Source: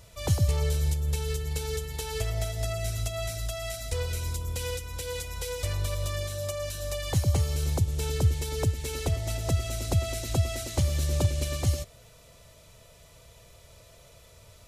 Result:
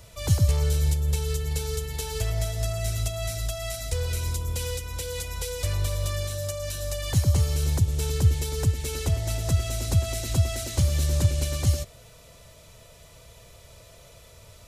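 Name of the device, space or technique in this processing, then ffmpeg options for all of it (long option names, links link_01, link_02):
one-band saturation: -filter_complex "[0:a]acrossover=split=210|3500[link_01][link_02][link_03];[link_02]asoftclip=type=tanh:threshold=-35dB[link_04];[link_01][link_04][link_03]amix=inputs=3:normalize=0,volume=3.5dB"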